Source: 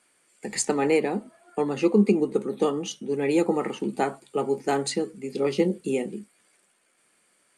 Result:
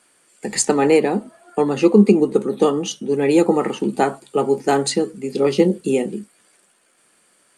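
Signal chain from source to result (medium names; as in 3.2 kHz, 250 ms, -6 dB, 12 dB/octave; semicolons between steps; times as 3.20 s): peaking EQ 2.2 kHz -4.5 dB 0.33 oct; trim +7.5 dB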